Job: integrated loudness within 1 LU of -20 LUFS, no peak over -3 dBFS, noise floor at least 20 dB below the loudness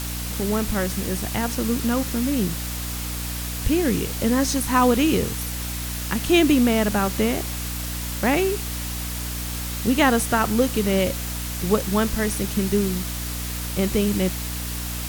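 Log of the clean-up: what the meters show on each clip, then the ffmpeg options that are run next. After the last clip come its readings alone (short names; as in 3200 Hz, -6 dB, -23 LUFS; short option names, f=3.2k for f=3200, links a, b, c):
hum 60 Hz; harmonics up to 300 Hz; hum level -28 dBFS; noise floor -29 dBFS; noise floor target -43 dBFS; loudness -23.0 LUFS; peak -4.0 dBFS; loudness target -20.0 LUFS
-> -af "bandreject=f=60:t=h:w=4,bandreject=f=120:t=h:w=4,bandreject=f=180:t=h:w=4,bandreject=f=240:t=h:w=4,bandreject=f=300:t=h:w=4"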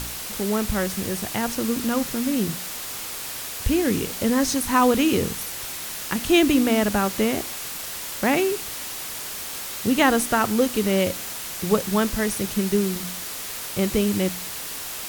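hum none; noise floor -33 dBFS; noise floor target -44 dBFS
-> -af "afftdn=nr=11:nf=-33"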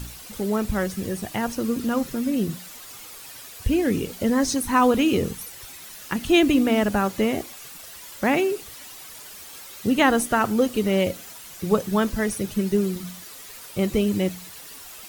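noise floor -42 dBFS; noise floor target -43 dBFS
-> -af "afftdn=nr=6:nf=-42"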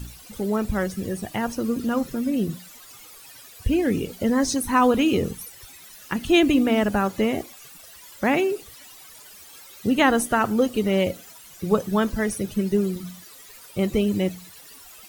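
noise floor -46 dBFS; loudness -23.5 LUFS; peak -5.0 dBFS; loudness target -20.0 LUFS
-> -af "volume=3.5dB,alimiter=limit=-3dB:level=0:latency=1"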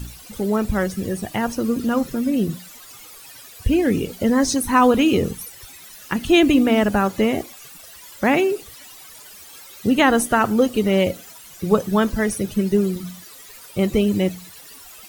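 loudness -20.0 LUFS; peak -3.0 dBFS; noise floor -43 dBFS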